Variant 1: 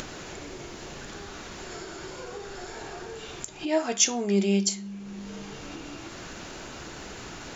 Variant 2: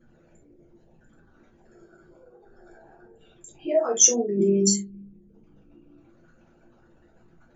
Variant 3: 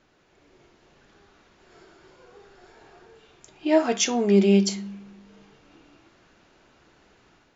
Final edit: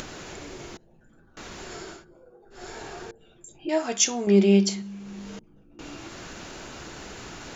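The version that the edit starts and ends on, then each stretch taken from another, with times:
1
0.77–1.37 s: from 2
1.97–2.58 s: from 2, crossfade 0.16 s
3.11–3.69 s: from 2
4.27–4.82 s: from 3
5.39–5.79 s: from 2

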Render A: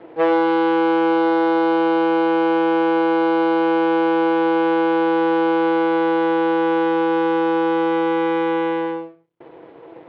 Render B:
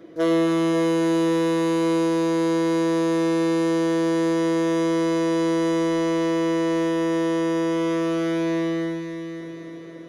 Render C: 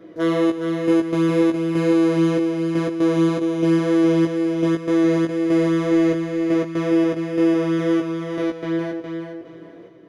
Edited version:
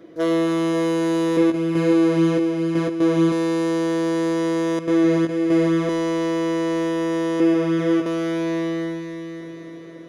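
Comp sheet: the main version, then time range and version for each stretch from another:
B
1.37–3.32 s: from C
4.79–5.89 s: from C
7.40–8.06 s: from C
not used: A

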